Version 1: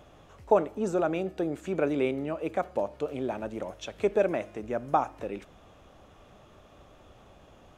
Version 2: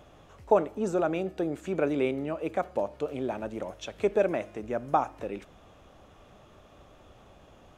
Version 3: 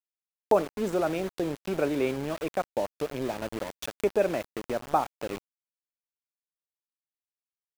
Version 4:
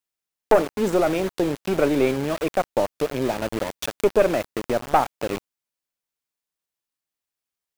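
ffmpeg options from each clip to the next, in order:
-af anull
-af "aeval=exprs='val(0)*gte(abs(val(0)),0.0178)':c=same,acompressor=mode=upward:threshold=-27dB:ratio=2.5"
-af "aeval=exprs='(tanh(6.31*val(0)+0.4)-tanh(0.4))/6.31':c=same,volume=9dB"

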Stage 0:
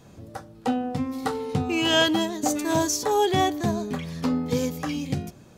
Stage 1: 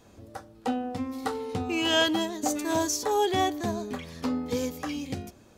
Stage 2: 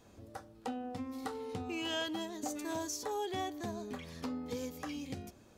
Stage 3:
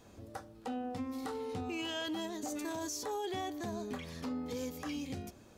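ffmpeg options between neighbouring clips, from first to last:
-af "equalizer=f=150:w=3.3:g=-14,volume=-3dB"
-af "acompressor=threshold=-35dB:ratio=2,volume=-5dB"
-af "alimiter=level_in=9dB:limit=-24dB:level=0:latency=1:release=14,volume=-9dB,volume=2.5dB"

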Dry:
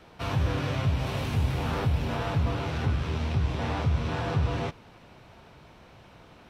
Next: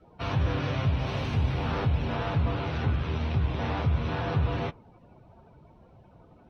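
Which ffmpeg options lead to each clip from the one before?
-af "afftdn=nr=19:nf=-49"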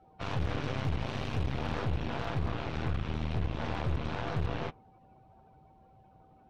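-af "volume=19.5dB,asoftclip=hard,volume=-19.5dB,aeval=exprs='0.112*(cos(1*acos(clip(val(0)/0.112,-1,1)))-cos(1*PI/2))+0.0355*(cos(4*acos(clip(val(0)/0.112,-1,1)))-cos(4*PI/2))':c=same,aeval=exprs='val(0)+0.002*sin(2*PI*770*n/s)':c=same,volume=-7dB"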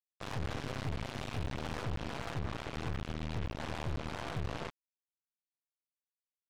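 -af "acrusher=bits=4:mix=0:aa=0.5,volume=-6dB"

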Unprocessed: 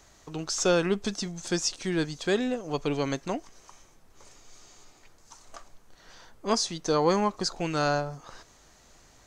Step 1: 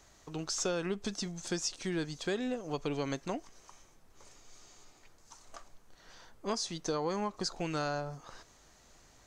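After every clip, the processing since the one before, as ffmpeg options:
-af "acompressor=threshold=-26dB:ratio=6,volume=-4dB"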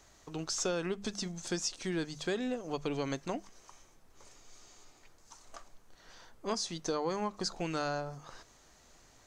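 -af "bandreject=f=50:t=h:w=6,bandreject=f=100:t=h:w=6,bandreject=f=150:t=h:w=6,bandreject=f=200:t=h:w=6"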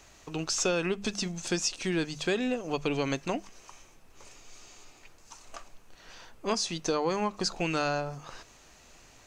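-af "equalizer=f=2.6k:w=4.4:g=8,volume=5dB"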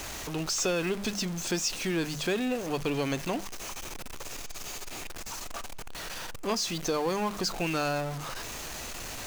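-af "aeval=exprs='val(0)+0.5*0.0282*sgn(val(0))':c=same,volume=-2.5dB"

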